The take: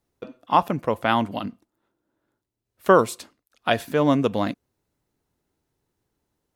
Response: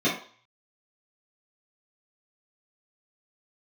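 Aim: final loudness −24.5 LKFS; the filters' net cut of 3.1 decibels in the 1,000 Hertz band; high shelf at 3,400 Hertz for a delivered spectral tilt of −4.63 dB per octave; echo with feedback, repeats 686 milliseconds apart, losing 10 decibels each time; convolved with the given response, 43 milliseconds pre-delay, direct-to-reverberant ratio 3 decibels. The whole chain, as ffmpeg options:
-filter_complex "[0:a]equalizer=frequency=1000:width_type=o:gain=-4.5,highshelf=frequency=3400:gain=7,aecho=1:1:686|1372|2058|2744:0.316|0.101|0.0324|0.0104,asplit=2[link_01][link_02];[1:a]atrim=start_sample=2205,adelay=43[link_03];[link_02][link_03]afir=irnorm=-1:irlink=0,volume=-17dB[link_04];[link_01][link_04]amix=inputs=2:normalize=0,volume=-3.5dB"

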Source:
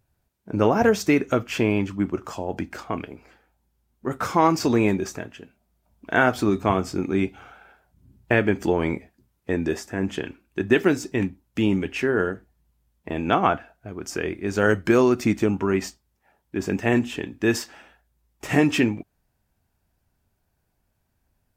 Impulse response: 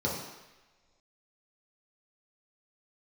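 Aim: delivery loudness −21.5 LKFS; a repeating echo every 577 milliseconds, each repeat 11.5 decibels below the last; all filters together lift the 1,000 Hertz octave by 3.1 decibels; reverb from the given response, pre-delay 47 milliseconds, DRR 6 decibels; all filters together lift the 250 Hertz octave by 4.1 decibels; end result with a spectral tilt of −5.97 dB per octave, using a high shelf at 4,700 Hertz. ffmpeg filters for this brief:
-filter_complex "[0:a]equalizer=frequency=250:width_type=o:gain=5,equalizer=frequency=1000:width_type=o:gain=3.5,highshelf=frequency=4700:gain=4.5,aecho=1:1:577|1154|1731:0.266|0.0718|0.0194,asplit=2[link_01][link_02];[1:a]atrim=start_sample=2205,adelay=47[link_03];[link_02][link_03]afir=irnorm=-1:irlink=0,volume=-14.5dB[link_04];[link_01][link_04]amix=inputs=2:normalize=0,volume=-3dB"

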